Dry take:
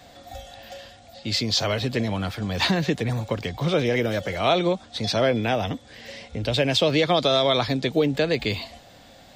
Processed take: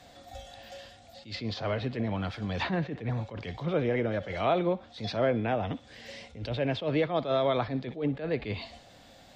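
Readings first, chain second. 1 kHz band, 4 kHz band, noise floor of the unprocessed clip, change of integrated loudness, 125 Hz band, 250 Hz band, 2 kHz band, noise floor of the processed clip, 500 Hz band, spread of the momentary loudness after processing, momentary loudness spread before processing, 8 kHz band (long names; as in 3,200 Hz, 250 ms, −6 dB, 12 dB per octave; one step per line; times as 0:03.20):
−6.0 dB, −15.5 dB, −50 dBFS, −7.5 dB, −6.0 dB, −6.5 dB, −9.0 dB, −55 dBFS, −6.5 dB, 19 LU, 20 LU, below −15 dB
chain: feedback echo with a high-pass in the loop 62 ms, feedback 49%, high-pass 620 Hz, level −18 dB
treble cut that deepens with the level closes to 1,900 Hz, closed at −20 dBFS
level that may rise only so fast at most 160 dB per second
level −5 dB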